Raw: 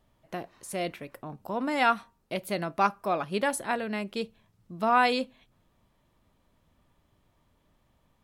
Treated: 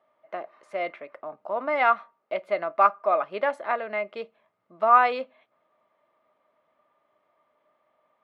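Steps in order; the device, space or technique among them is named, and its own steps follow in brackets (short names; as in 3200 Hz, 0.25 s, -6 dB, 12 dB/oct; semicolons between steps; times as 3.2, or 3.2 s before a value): tin-can telephone (BPF 510–2000 Hz; small resonant body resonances 620/1200/2100 Hz, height 11 dB); gain +2 dB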